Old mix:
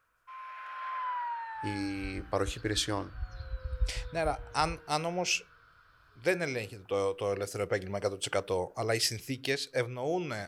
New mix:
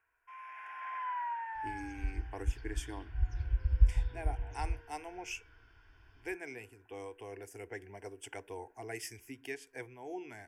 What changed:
speech -8.5 dB; second sound +8.5 dB; master: add fixed phaser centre 830 Hz, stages 8

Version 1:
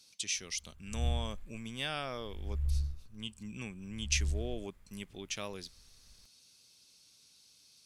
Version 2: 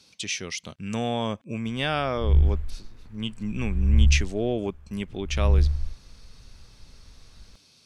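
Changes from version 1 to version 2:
background: entry +1.30 s; master: remove pre-emphasis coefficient 0.8

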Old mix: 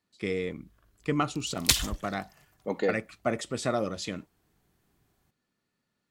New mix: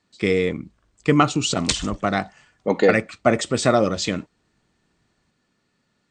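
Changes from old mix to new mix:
speech +11.0 dB; master: add brick-wall FIR low-pass 9000 Hz

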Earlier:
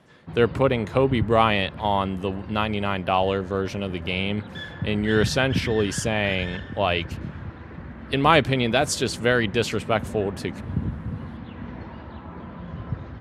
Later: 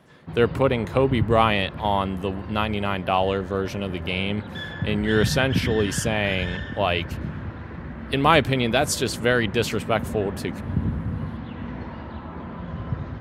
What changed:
background: send +7.5 dB; master: remove LPF 9700 Hz 12 dB/oct

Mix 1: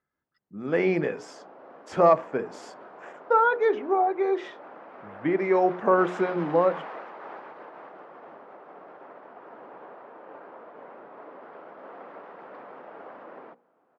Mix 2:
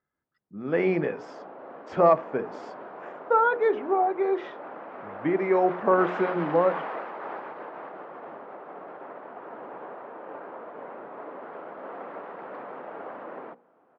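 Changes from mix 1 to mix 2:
background +5.5 dB; master: add air absorption 160 m

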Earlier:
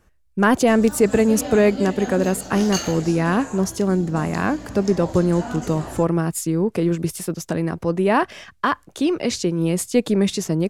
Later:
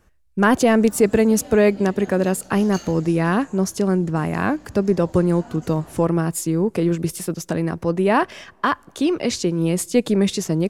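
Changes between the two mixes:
background -11.5 dB; reverb: on, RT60 2.7 s

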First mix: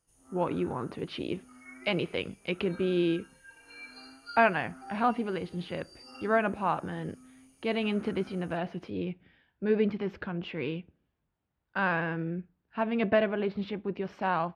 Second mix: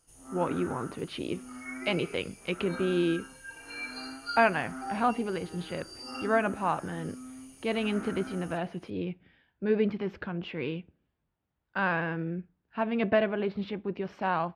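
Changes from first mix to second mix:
first sound +10.5 dB; second sound +8.0 dB

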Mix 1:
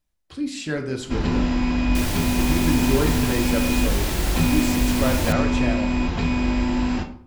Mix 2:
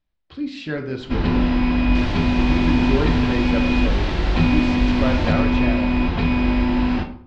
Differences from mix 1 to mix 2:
first sound +3.0 dB; master: add LPF 4300 Hz 24 dB/oct

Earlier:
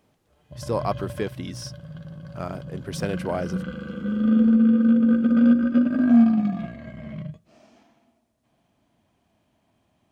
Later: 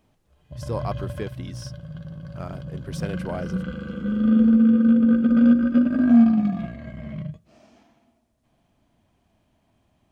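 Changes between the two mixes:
speech -4.5 dB; master: remove HPF 120 Hz 6 dB/oct

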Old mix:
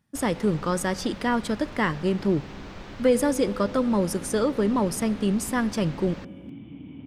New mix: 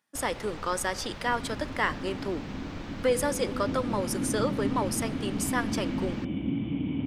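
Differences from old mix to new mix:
speech: add Bessel high-pass 610 Hz, order 2; second sound +11.0 dB

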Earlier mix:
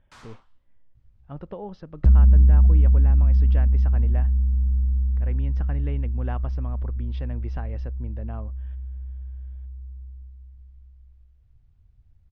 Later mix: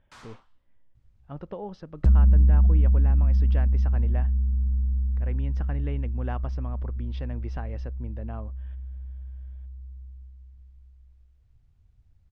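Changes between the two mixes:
speech: remove LPF 5600 Hz; second sound: remove air absorption 68 m; master: add low shelf 120 Hz -4 dB

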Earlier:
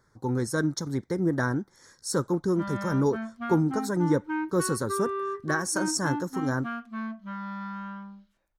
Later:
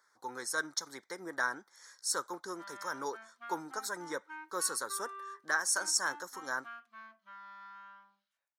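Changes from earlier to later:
background -9.0 dB; master: add HPF 990 Hz 12 dB/oct

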